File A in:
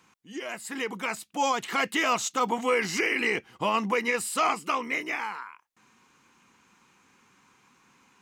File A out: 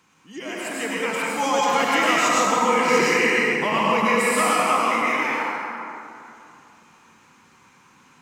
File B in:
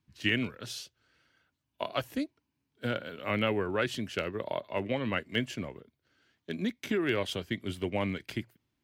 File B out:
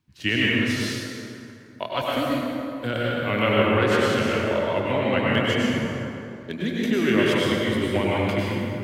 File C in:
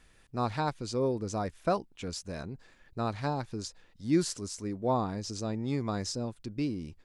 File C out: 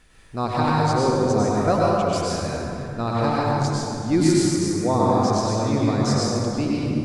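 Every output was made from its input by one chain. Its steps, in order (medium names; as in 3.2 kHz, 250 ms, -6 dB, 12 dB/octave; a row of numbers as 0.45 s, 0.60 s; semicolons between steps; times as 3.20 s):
plate-style reverb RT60 2.7 s, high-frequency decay 0.55×, pre-delay 85 ms, DRR -6 dB; peak normalisation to -6 dBFS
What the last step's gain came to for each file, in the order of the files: +1.0 dB, +4.0 dB, +5.0 dB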